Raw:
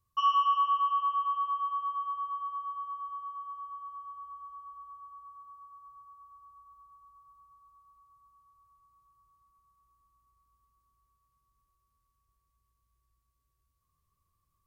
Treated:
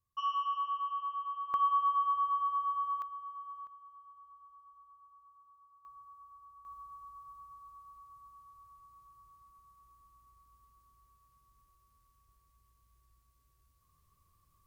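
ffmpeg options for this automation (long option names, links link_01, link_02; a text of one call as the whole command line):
ffmpeg -i in.wav -af "asetnsamples=nb_out_samples=441:pad=0,asendcmd='1.54 volume volume 4dB;3.02 volume volume -4dB;3.67 volume volume -11.5dB;5.85 volume volume -1dB;6.65 volume volume 7.5dB',volume=-8dB" out.wav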